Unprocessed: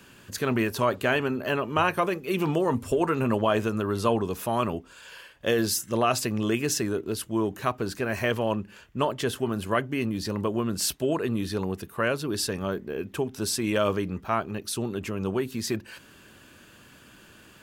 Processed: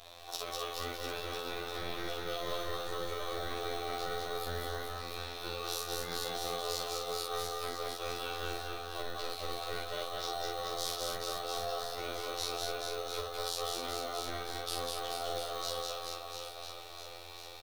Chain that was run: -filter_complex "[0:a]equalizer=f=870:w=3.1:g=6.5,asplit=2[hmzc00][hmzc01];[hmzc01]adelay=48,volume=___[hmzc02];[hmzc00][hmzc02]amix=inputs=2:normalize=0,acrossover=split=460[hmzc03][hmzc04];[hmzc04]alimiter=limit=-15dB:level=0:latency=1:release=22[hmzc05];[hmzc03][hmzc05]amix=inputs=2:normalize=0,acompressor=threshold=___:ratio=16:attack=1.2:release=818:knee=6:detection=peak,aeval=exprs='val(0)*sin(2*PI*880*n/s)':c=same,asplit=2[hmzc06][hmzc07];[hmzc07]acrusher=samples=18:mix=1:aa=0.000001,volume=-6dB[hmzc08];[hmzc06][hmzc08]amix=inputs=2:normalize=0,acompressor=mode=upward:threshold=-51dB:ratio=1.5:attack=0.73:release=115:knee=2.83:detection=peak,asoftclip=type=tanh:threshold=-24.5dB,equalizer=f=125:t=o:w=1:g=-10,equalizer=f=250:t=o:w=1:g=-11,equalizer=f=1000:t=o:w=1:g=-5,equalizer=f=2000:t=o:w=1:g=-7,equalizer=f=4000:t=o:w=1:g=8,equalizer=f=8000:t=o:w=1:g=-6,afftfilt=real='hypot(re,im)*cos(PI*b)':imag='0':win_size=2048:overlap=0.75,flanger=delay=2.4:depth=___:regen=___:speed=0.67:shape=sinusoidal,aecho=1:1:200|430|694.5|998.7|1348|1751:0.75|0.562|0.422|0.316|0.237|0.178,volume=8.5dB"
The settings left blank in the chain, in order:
-3dB, -28dB, 7.6, -64